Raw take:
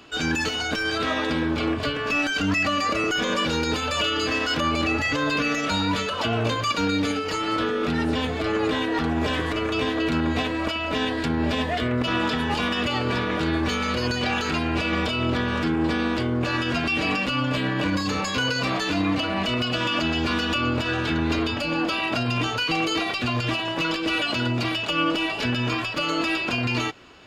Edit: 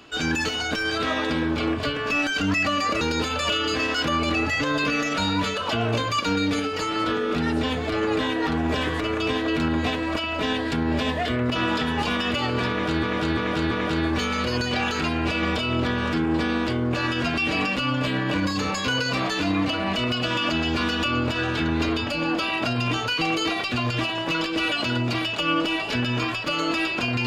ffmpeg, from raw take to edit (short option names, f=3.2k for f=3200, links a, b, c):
-filter_complex "[0:a]asplit=5[a][b][c][d][e];[a]atrim=end=3.012[f];[b]atrim=start=3.528:end=13.552[g];[c]atrim=start=13.208:end=13.552[h];[d]atrim=start=13.208:end=13.552[i];[e]atrim=start=13.208[j];[f][g]acrossfade=d=0.004:c1=hsin:c2=hsin[k];[k][h]acrossfade=d=0.004:c1=hsin:c2=hsin[l];[l][i]acrossfade=d=0.004:c1=hsin:c2=hsin[m];[m][j]acrossfade=d=0.004:c1=hsin:c2=hsin"